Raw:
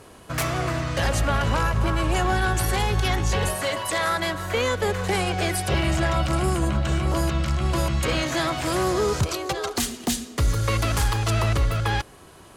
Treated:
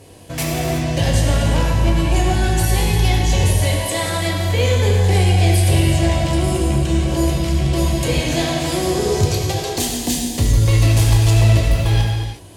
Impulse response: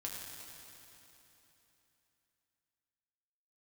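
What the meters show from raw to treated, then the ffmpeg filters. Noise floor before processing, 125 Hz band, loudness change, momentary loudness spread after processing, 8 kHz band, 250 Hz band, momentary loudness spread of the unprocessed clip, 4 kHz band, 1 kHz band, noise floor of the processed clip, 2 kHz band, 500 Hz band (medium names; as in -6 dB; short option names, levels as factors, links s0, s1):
-47 dBFS, +10.0 dB, +7.0 dB, 6 LU, +6.5 dB, +7.0 dB, 4 LU, +5.5 dB, +0.5 dB, -27 dBFS, +1.0 dB, +5.0 dB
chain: -filter_complex "[0:a]equalizer=f=1300:w=2:g=-15[s0];[1:a]atrim=start_sample=2205,afade=t=out:st=0.43:d=0.01,atrim=end_sample=19404[s1];[s0][s1]afir=irnorm=-1:irlink=0,asplit=2[s2][s3];[s3]aeval=exprs='clip(val(0),-1,0.119)':c=same,volume=0.316[s4];[s2][s4]amix=inputs=2:normalize=0,volume=1.78"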